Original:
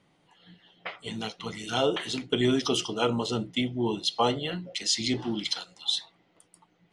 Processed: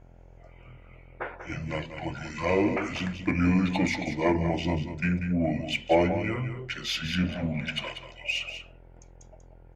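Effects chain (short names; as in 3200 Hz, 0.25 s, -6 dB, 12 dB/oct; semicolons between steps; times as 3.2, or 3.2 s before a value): buzz 60 Hz, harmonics 22, -54 dBFS -6 dB/oct; in parallel at -3.5 dB: soft clip -22 dBFS, distortion -13 dB; on the sum: varispeed -29%; fifteen-band EQ 100 Hz +4 dB, 630 Hz +6 dB, 4000 Hz -8 dB; echo 0.19 s -9.5 dB; on a send at -18 dB: reverb RT60 0.40 s, pre-delay 3 ms; on the sum: gain -4 dB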